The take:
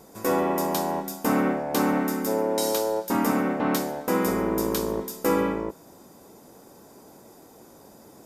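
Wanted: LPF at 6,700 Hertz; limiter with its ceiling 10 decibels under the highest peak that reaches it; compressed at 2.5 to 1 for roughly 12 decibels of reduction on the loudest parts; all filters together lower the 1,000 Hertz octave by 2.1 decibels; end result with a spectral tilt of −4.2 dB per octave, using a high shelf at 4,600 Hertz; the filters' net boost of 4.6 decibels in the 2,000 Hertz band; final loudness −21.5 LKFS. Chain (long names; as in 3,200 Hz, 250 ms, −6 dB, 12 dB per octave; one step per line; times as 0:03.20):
low-pass filter 6,700 Hz
parametric band 1,000 Hz −4.5 dB
parametric band 2,000 Hz +6.5 dB
high-shelf EQ 4,600 Hz +7 dB
downward compressor 2.5 to 1, threshold −38 dBFS
level +20 dB
brickwall limiter −11.5 dBFS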